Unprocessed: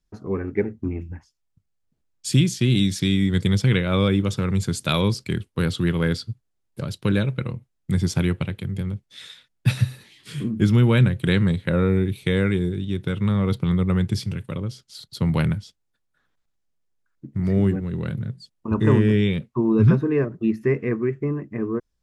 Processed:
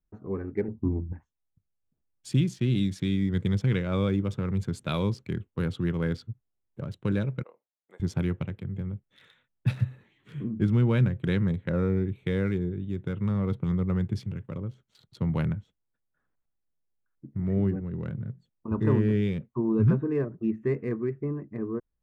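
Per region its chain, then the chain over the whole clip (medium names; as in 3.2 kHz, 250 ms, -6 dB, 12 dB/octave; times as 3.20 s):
0.68–1.13 s: resonant low-pass 990 Hz, resonance Q 6.9 + tilt shelf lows +7 dB, about 650 Hz
7.43–8.00 s: high-pass 550 Hz 24 dB/octave + peaking EQ 2.4 kHz -9.5 dB 2.7 oct
whole clip: local Wiener filter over 9 samples; treble shelf 2.4 kHz -9 dB; trim -6 dB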